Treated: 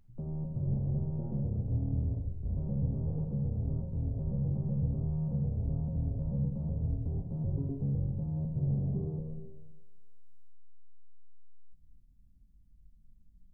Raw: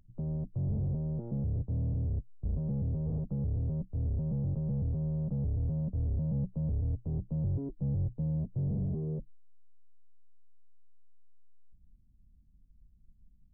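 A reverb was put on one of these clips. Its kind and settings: plate-style reverb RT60 1.3 s, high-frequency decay 0.95×, DRR 1 dB; trim -2 dB

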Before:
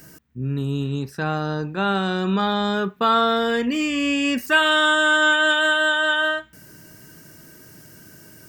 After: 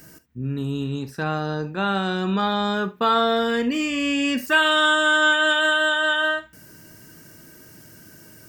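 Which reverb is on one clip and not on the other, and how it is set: gated-style reverb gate 90 ms flat, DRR 11.5 dB; trim -1 dB

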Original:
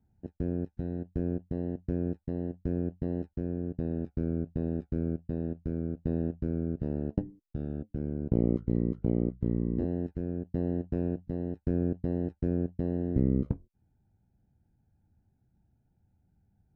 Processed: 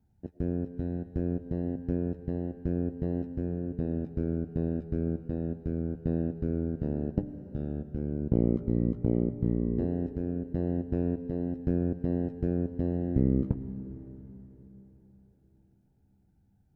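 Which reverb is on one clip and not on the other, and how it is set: algorithmic reverb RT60 4.2 s, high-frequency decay 0.9×, pre-delay 65 ms, DRR 11 dB; trim +1 dB

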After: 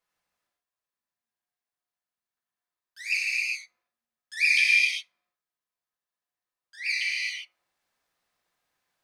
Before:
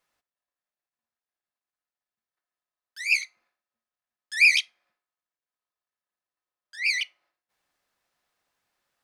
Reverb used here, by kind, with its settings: gated-style reverb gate 430 ms flat, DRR -5.5 dB; trim -7 dB

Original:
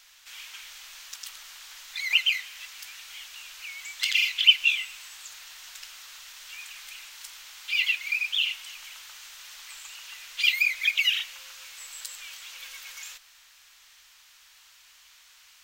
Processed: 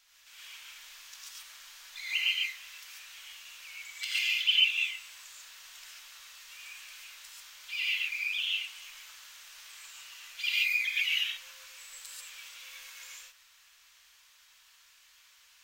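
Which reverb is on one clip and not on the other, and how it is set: gated-style reverb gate 160 ms rising, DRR -5 dB; trim -11 dB

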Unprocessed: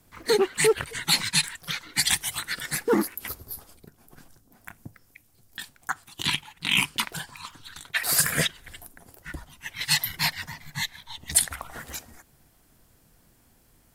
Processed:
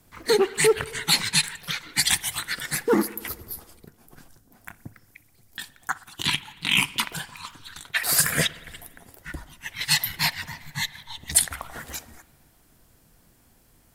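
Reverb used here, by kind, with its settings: spring tank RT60 1.6 s, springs 57 ms, chirp 30 ms, DRR 18.5 dB; trim +1.5 dB

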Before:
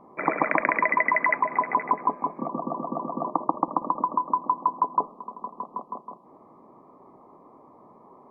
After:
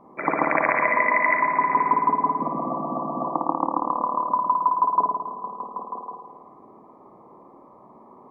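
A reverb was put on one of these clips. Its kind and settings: spring tank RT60 1.4 s, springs 54 ms, chirp 65 ms, DRR 0.5 dB

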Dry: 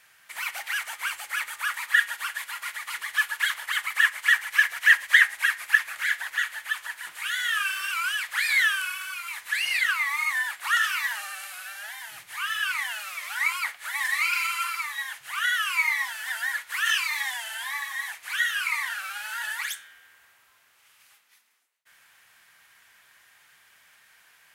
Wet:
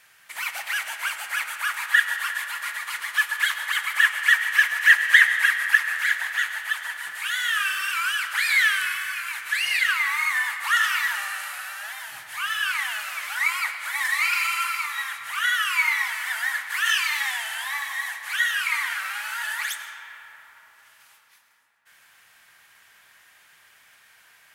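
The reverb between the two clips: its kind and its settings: algorithmic reverb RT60 4.4 s, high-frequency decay 0.4×, pre-delay 60 ms, DRR 6.5 dB; trim +2 dB

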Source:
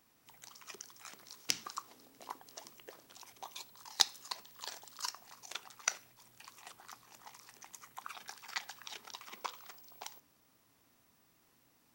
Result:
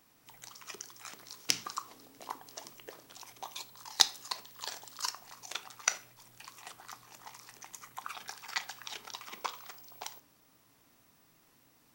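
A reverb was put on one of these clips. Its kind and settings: simulated room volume 420 m³, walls furnished, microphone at 0.43 m; trim +4 dB

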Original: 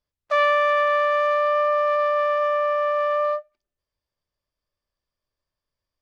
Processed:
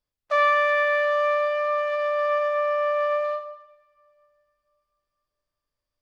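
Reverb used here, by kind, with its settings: two-slope reverb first 0.85 s, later 3.3 s, from -26 dB, DRR 5.5 dB; trim -2 dB

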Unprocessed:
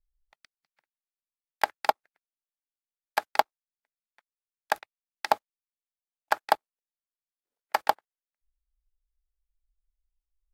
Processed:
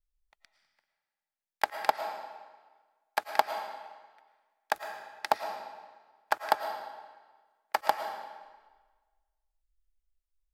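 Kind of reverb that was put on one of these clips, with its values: algorithmic reverb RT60 1.4 s, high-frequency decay 0.9×, pre-delay 70 ms, DRR 6.5 dB; trim -3 dB

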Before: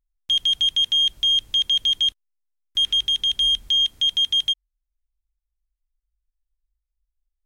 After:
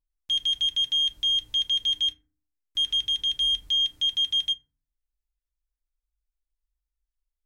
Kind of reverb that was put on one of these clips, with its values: FDN reverb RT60 0.43 s, low-frequency decay 1.45×, high-frequency decay 0.4×, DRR 6 dB; trim -7 dB

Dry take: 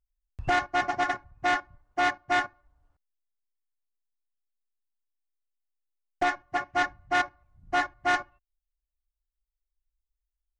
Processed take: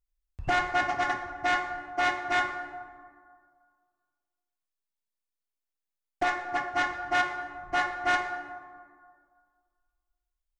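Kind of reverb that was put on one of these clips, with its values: plate-style reverb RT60 1.9 s, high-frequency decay 0.45×, DRR 5 dB; trim -1.5 dB

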